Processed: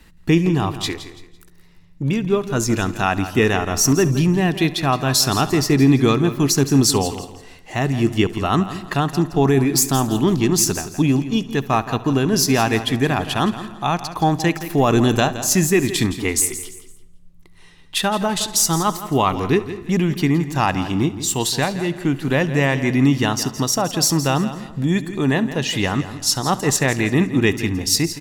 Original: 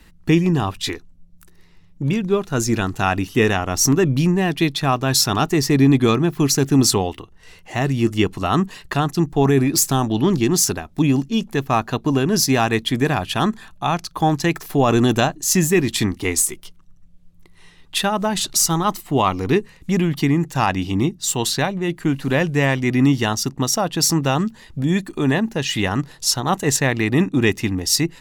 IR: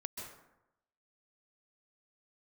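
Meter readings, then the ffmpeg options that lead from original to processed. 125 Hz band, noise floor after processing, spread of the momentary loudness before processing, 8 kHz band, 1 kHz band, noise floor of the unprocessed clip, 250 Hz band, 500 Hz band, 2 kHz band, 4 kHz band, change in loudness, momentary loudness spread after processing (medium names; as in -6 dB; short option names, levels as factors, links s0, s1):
+0.5 dB, -45 dBFS, 6 LU, +0.5 dB, +0.5 dB, -48 dBFS, +0.5 dB, +0.5 dB, +0.5 dB, +0.5 dB, +0.5 dB, 7 LU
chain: -filter_complex "[0:a]aecho=1:1:168|336|504:0.224|0.0694|0.0215,asplit=2[s0][s1];[1:a]atrim=start_sample=2205,adelay=69[s2];[s1][s2]afir=irnorm=-1:irlink=0,volume=0.158[s3];[s0][s3]amix=inputs=2:normalize=0"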